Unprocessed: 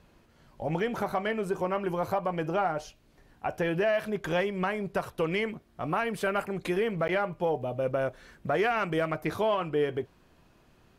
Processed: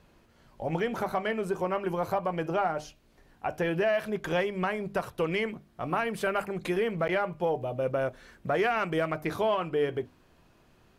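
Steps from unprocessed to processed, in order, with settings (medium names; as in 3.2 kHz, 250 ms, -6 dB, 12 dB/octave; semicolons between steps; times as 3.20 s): hum notches 50/100/150/200/250/300 Hz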